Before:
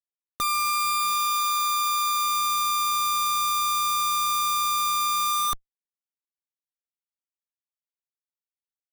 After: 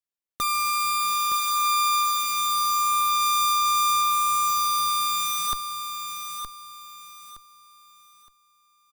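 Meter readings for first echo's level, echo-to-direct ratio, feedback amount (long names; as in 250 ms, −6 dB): −8.0 dB, −7.5 dB, 30%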